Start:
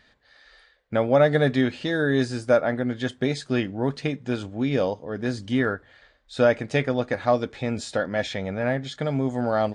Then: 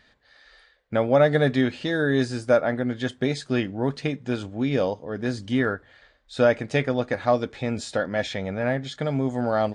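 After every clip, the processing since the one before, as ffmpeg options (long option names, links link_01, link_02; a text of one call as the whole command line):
ffmpeg -i in.wav -af anull out.wav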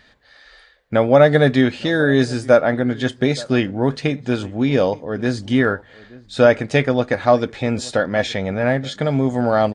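ffmpeg -i in.wav -filter_complex "[0:a]asplit=2[link_01][link_02];[link_02]adelay=874.6,volume=-21dB,highshelf=frequency=4000:gain=-19.7[link_03];[link_01][link_03]amix=inputs=2:normalize=0,volume=6.5dB" out.wav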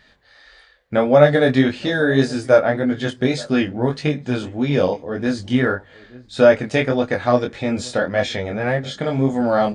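ffmpeg -i in.wav -af "flanger=delay=20:depth=4.2:speed=1.7,volume=2dB" out.wav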